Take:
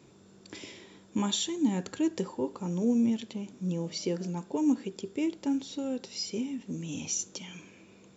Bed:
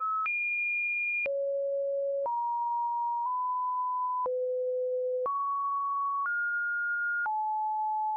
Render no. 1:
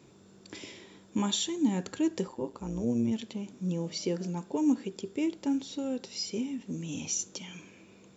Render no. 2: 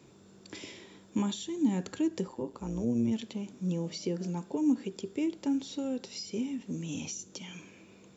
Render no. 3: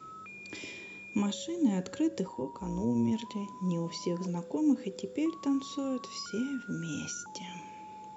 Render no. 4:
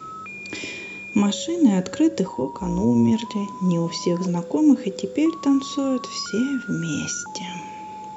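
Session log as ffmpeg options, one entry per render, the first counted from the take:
-filter_complex "[0:a]asplit=3[a][b][c];[a]afade=t=out:st=2.26:d=0.02[d];[b]tremolo=f=120:d=0.71,afade=t=in:st=2.26:d=0.02,afade=t=out:st=3.11:d=0.02[e];[c]afade=t=in:st=3.11:d=0.02[f];[d][e][f]amix=inputs=3:normalize=0"
-filter_complex "[0:a]acrossover=split=390[a][b];[b]acompressor=threshold=-38dB:ratio=6[c];[a][c]amix=inputs=2:normalize=0"
-filter_complex "[1:a]volume=-17dB[a];[0:a][a]amix=inputs=2:normalize=0"
-af "volume=11dB"

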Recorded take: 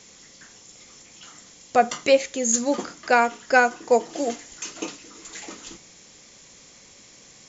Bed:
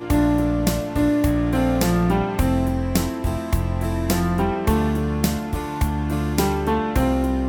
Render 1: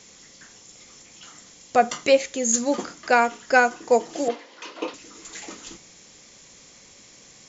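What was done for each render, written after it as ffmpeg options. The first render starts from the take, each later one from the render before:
-filter_complex "[0:a]asettb=1/sr,asplit=3[a][b][c];[a]atrim=end=4.284[d];[b]atrim=start=4.28:end=4.94,asetpts=PTS-STARTPTS,afade=t=in:d=0.004:c=qsin,afade=t=out:st=0.656:d=0.004:c=qsin,highpass=f=210:w=0.5412,highpass=f=210:w=1.3066,equalizer=f=210:t=q:w=4:g=-5,equalizer=f=520:t=q:w=4:g=9,equalizer=f=1k:t=q:w=4:g=9,lowpass=f=4.4k:w=0.5412,lowpass=f=4.4k:w=1.3066[e];[c]atrim=start=4.936[f];[d][e]acrossfade=d=0.004:c1=hsin:c2=qsin[g];[g][f]acrossfade=d=0.004:c1=qsin:c2=hsin"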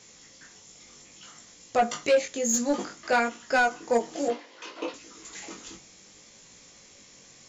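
-af "flanger=delay=17.5:depth=4.2:speed=0.61,asoftclip=type=tanh:threshold=-14.5dB"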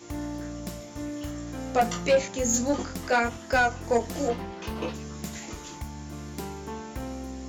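-filter_complex "[1:a]volume=-16dB[a];[0:a][a]amix=inputs=2:normalize=0"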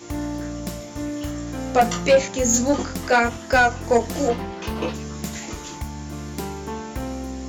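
-af "volume=6dB"

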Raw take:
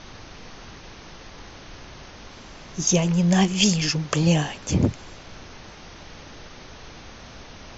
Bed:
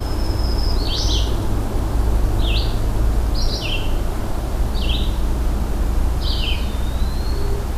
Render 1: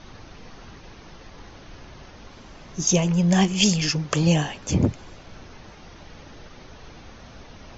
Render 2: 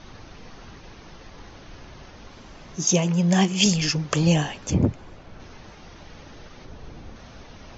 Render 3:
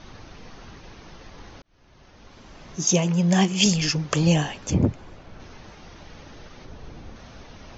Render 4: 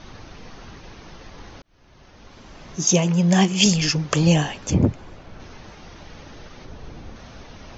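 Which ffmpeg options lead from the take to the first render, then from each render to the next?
-af "afftdn=nr=6:nf=-44"
-filter_complex "[0:a]asettb=1/sr,asplit=3[a][b][c];[a]atrim=end=2.764[d];[b]atrim=start=2.76:end=3.66,asetpts=PTS-STARTPTS,afade=t=in:d=0.004:c=qsin,afade=t=out:st=0.896:d=0.004:c=qsin,highpass=120[e];[c]atrim=start=3.656[f];[d][e]acrossfade=d=0.004:c1=hsin:c2=qsin[g];[g][f]acrossfade=d=0.004:c1=qsin:c2=hsin,asettb=1/sr,asplit=3[h][i][j];[h]atrim=end=4.704[k];[i]atrim=start=4.7:end=5.4,asetpts=PTS-STARTPTS,afade=t=in:d=0.004:c=qsin,afade=t=out:st=0.696:d=0.004:c=qsin,highshelf=f=3k:g=-10[l];[j]atrim=start=5.396[m];[k][l]acrossfade=d=0.004:c1=hsin:c2=qsin[n];[n][m]acrossfade=d=0.004:c1=qsin:c2=hsin,asettb=1/sr,asplit=3[o][p][q];[o]atrim=end=6.654[r];[p]atrim=start=6.65:end=7.16,asetpts=PTS-STARTPTS,afade=t=in:d=0.004:c=qsin,afade=t=out:st=0.506:d=0.004:c=qsin,tiltshelf=f=700:g=4.5[s];[q]atrim=start=7.156[t];[r][s]acrossfade=d=0.004:c1=hsin:c2=qsin[u];[u][t]acrossfade=d=0.004:c1=qsin:c2=hsin"
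-filter_complex "[0:a]asplit=2[a][b];[a]atrim=end=1.62,asetpts=PTS-STARTPTS,afade=t=out:st=1.616:d=0.004:c=hsin[c];[b]atrim=start=1.62,asetpts=PTS-STARTPTS,afade=t=in:d=1.07[d];[c][d]concat=n=2:v=0:a=1"
-af "volume=2.5dB"

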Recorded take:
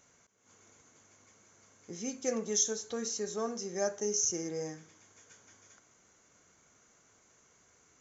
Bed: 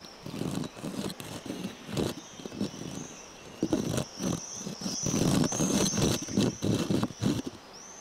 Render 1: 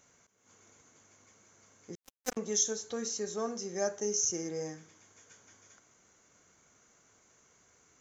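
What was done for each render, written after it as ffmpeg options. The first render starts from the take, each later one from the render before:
-filter_complex "[0:a]asettb=1/sr,asplit=3[a][b][c];[a]atrim=end=1.954[d];[b]atrim=start=1.95:end=2.37,asetpts=PTS-STARTPTS,afade=t=in:d=0.004:c=qsin,afade=t=out:st=0.416:d=0.004:c=qsin,acrusher=bits=3:mix=0:aa=0.5[e];[c]atrim=start=2.366[f];[d][e]acrossfade=d=0.004:c1=hsin:c2=qsin[g];[g][f]acrossfade=d=0.004:c1=qsin:c2=hsin"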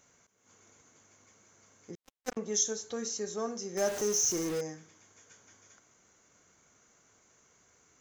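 -filter_complex "[0:a]asettb=1/sr,asplit=3[a][b][c];[a]atrim=end=1.914[d];[b]atrim=start=1.91:end=2.54,asetpts=PTS-STARTPTS,afade=t=in:d=0.004:c=qsin,afade=t=out:st=0.626:d=0.004:c=qsin,highshelf=f=6k:g=-11[e];[c]atrim=start=2.536[f];[d][e]acrossfade=d=0.004:c1=hsin:c2=qsin[g];[g][f]acrossfade=d=0.004:c1=qsin:c2=hsin,asettb=1/sr,asplit=3[h][i][j];[h]atrim=end=3.774[k];[i]atrim=start=3.77:end=4.61,asetpts=PTS-STARTPTS,afade=t=in:d=0.004:c=qsin,afade=t=out:st=0.836:d=0.004:c=qsin,aeval=exprs='val(0)+0.5*0.0211*sgn(val(0))':c=same[l];[j]atrim=start=4.606[m];[k][l]acrossfade=d=0.004:c1=hsin:c2=qsin[n];[n][m]acrossfade=d=0.004:c1=qsin:c2=hsin"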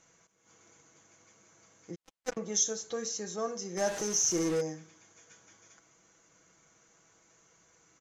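-af "lowpass=9.2k,aecho=1:1:6.1:0.53"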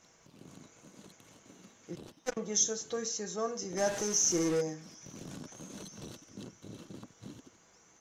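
-filter_complex "[1:a]volume=-20dB[a];[0:a][a]amix=inputs=2:normalize=0"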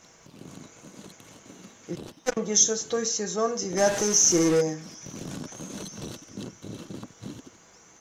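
-af "volume=8.5dB"

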